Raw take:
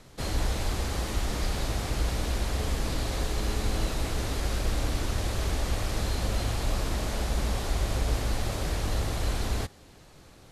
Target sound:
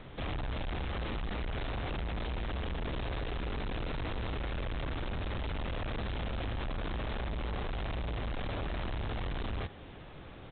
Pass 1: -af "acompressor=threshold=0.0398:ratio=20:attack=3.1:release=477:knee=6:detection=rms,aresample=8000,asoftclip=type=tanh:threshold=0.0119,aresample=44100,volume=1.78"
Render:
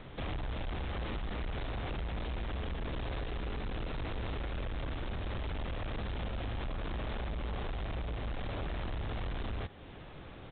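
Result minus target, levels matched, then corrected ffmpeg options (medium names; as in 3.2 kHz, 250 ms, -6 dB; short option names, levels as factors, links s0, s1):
compression: peak gain reduction +7.5 dB
-af "acompressor=threshold=0.106:ratio=20:attack=3.1:release=477:knee=6:detection=rms,aresample=8000,asoftclip=type=tanh:threshold=0.0119,aresample=44100,volume=1.78"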